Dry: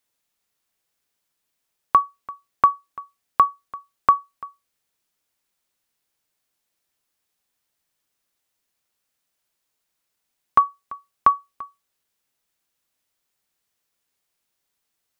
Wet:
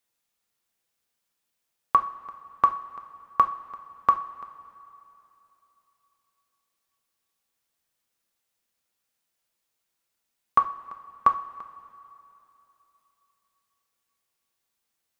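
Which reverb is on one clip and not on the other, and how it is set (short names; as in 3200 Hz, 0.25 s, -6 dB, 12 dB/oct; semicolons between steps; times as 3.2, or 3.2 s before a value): two-slope reverb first 0.4 s, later 3.2 s, from -17 dB, DRR 5.5 dB; gain -3.5 dB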